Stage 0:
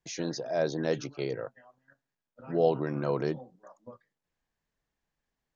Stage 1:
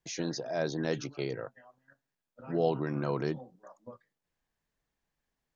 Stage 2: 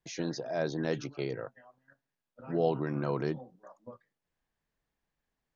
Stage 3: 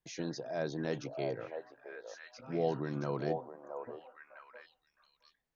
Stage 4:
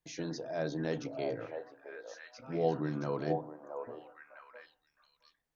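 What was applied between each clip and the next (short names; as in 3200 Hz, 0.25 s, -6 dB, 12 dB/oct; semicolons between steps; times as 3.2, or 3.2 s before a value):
dynamic EQ 540 Hz, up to -5 dB, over -37 dBFS, Q 1.6
high shelf 6200 Hz -9 dB
delay with a stepping band-pass 0.667 s, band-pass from 700 Hz, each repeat 1.4 oct, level -1.5 dB; gain -4 dB
FDN reverb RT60 0.41 s, low-frequency decay 1.4×, high-frequency decay 0.35×, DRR 10 dB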